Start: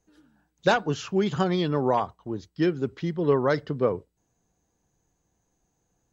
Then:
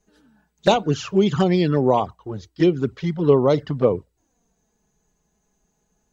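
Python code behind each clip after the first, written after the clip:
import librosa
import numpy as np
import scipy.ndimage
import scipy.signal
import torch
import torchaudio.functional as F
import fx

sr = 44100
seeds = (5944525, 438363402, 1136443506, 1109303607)

y = fx.env_flanger(x, sr, rest_ms=4.8, full_db=-19.0)
y = y * librosa.db_to_amplitude(7.5)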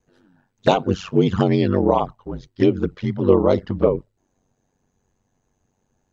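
y = fx.lowpass(x, sr, hz=3300.0, slope=6)
y = y * np.sin(2.0 * np.pi * 47.0 * np.arange(len(y)) / sr)
y = y * librosa.db_to_amplitude(3.5)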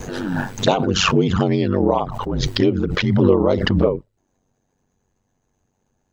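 y = fx.pre_swell(x, sr, db_per_s=27.0)
y = y * librosa.db_to_amplitude(-1.0)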